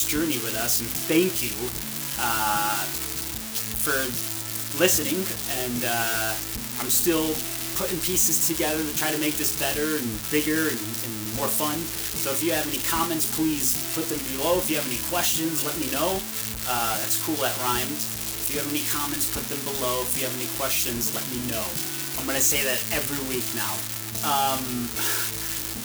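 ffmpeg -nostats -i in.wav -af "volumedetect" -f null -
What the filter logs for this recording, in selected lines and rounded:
mean_volume: -25.9 dB
max_volume: -8.5 dB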